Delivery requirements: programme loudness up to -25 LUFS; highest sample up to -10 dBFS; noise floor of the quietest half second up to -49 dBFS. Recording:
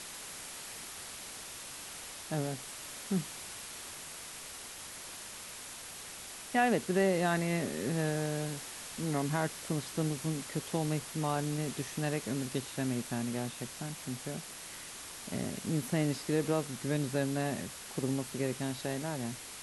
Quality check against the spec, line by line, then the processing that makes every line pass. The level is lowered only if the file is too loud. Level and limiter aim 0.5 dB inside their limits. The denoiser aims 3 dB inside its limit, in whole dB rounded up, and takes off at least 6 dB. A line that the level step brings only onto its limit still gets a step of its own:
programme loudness -35.5 LUFS: pass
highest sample -16.5 dBFS: pass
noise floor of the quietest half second -46 dBFS: fail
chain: noise reduction 6 dB, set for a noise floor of -46 dBFS

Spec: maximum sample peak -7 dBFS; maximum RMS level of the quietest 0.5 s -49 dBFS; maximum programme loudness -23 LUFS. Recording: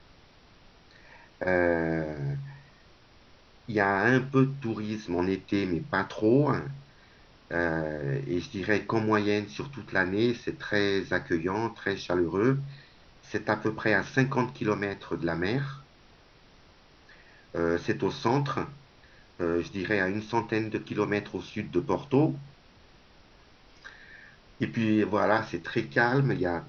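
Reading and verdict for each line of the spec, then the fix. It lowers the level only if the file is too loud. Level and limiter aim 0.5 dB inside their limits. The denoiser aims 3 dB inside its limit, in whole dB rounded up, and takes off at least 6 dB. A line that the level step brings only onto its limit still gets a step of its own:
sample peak -9.5 dBFS: pass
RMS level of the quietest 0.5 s -57 dBFS: pass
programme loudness -28.5 LUFS: pass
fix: none needed

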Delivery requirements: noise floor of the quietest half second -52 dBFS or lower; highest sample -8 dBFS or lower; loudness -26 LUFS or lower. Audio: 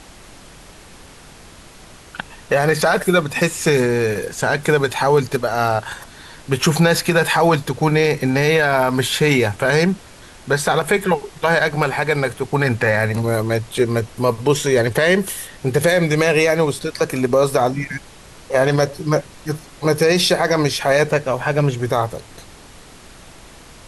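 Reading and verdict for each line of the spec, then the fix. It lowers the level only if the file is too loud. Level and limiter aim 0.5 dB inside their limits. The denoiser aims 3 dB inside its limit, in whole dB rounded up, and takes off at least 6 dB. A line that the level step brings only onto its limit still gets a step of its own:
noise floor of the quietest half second -42 dBFS: fail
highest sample -5.0 dBFS: fail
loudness -18.0 LUFS: fail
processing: noise reduction 6 dB, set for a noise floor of -42 dBFS; trim -8.5 dB

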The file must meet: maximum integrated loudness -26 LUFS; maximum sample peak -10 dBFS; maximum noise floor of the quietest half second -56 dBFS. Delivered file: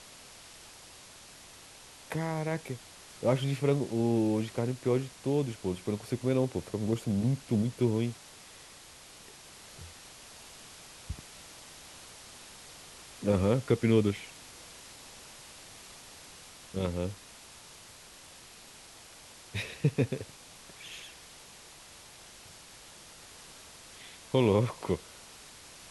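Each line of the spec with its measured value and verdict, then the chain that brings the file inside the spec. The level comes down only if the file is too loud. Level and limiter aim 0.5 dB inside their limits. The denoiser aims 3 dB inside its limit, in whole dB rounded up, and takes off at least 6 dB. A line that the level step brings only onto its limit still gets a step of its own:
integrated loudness -31.0 LUFS: pass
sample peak -12.5 dBFS: pass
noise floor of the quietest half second -52 dBFS: fail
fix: noise reduction 7 dB, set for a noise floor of -52 dBFS

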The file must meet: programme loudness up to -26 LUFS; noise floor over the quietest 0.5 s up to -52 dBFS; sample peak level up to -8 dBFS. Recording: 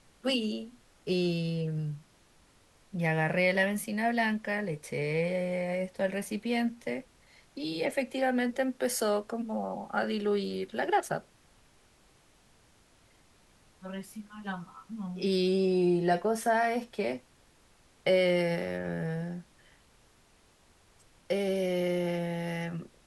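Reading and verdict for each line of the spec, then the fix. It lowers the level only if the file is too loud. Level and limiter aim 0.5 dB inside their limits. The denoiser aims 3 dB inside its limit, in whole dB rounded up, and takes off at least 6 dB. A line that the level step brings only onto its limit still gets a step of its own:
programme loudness -31.0 LUFS: pass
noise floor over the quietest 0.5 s -63 dBFS: pass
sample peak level -15.0 dBFS: pass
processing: none needed

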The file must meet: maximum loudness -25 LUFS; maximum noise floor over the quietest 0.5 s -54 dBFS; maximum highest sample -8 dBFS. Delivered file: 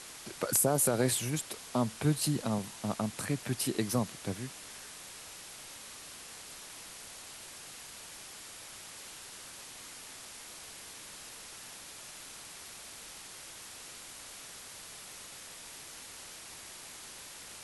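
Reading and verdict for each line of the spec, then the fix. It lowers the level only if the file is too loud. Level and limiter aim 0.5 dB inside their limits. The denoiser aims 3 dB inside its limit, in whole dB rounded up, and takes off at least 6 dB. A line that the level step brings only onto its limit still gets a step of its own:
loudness -37.0 LUFS: pass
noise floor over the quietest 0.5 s -48 dBFS: fail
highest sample -14.0 dBFS: pass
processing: noise reduction 9 dB, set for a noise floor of -48 dBFS

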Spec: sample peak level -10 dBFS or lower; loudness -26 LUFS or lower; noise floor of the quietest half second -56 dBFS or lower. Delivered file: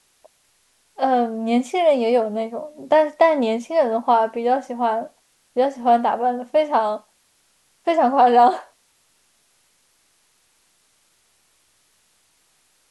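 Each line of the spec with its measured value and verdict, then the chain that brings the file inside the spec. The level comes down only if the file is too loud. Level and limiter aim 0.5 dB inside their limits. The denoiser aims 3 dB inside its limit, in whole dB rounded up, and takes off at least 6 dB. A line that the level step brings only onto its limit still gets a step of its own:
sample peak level -3.5 dBFS: fail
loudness -19.5 LUFS: fail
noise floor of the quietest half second -62 dBFS: pass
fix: trim -7 dB

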